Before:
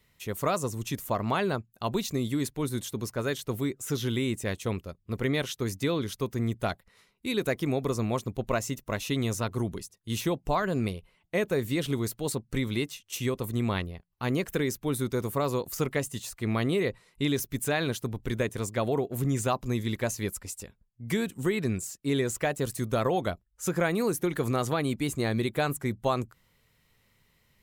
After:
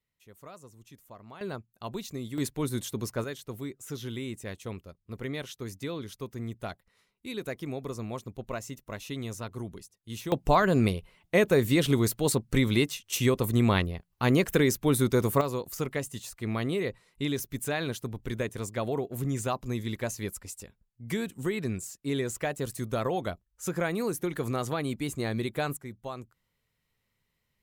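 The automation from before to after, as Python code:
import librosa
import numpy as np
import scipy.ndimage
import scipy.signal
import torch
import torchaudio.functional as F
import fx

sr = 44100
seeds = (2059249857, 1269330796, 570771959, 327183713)

y = fx.gain(x, sr, db=fx.steps((0.0, -20.0), (1.41, -7.5), (2.38, 0.0), (3.24, -7.5), (10.32, 5.0), (15.41, -3.0), (25.77, -11.5)))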